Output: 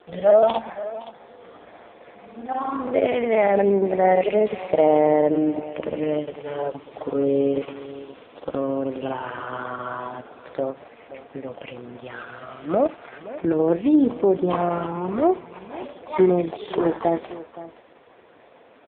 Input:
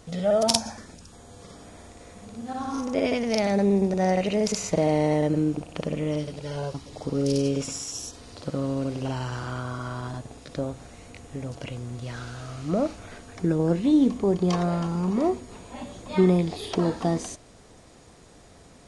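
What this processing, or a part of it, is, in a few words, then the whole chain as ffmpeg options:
satellite phone: -filter_complex "[0:a]asplit=3[link_01][link_02][link_03];[link_01]afade=type=out:start_time=6.85:duration=0.02[link_04];[link_02]adynamicequalizer=threshold=0.00447:dfrequency=1100:dqfactor=1.6:tfrequency=1100:tqfactor=1.6:attack=5:release=100:ratio=0.375:range=1.5:mode=boostabove:tftype=bell,afade=type=in:start_time=6.85:duration=0.02,afade=type=out:start_time=7.84:duration=0.02[link_05];[link_03]afade=type=in:start_time=7.84:duration=0.02[link_06];[link_04][link_05][link_06]amix=inputs=3:normalize=0,highpass=390,lowpass=3000,aecho=1:1:519:0.158,volume=8.5dB" -ar 8000 -c:a libopencore_amrnb -b:a 4750

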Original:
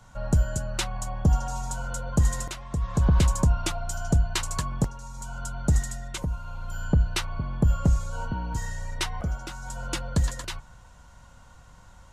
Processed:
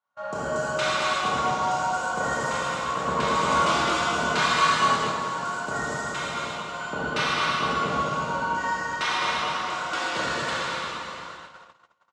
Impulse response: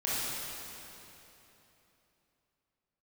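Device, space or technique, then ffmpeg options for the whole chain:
station announcement: -filter_complex "[0:a]highpass=480,lowpass=4100,equalizer=frequency=1200:width_type=o:width=0.45:gain=7,aecho=1:1:110.8|215.7:0.398|0.631[link_01];[1:a]atrim=start_sample=2205[link_02];[link_01][link_02]afir=irnorm=-1:irlink=0,agate=range=-31dB:threshold=-40dB:ratio=16:detection=peak,asettb=1/sr,asplit=3[link_03][link_04][link_05];[link_03]atrim=end=3.484[link_06];[link_04]atrim=start=3.48:end=5.12,asetpts=PTS-STARTPTS,afade=type=in:duration=0.004:curve=qsin,afade=type=out:start_time=1.636:duration=0.004:curve=qsin,asplit=2[link_07][link_08];[link_08]adelay=25,volume=-3.5dB[link_09];[link_07][link_09]amix=inputs=2:normalize=0,atrim=end_sample=72324[link_10];[link_05]atrim=start=5.116[link_11];[link_06][link_10]acrossfade=duration=0.004:curve1=hsin:curve2=qsin[link_12];[link_12][link_11]acrossfade=duration=0.004:curve1=qsin:curve2=hsin"

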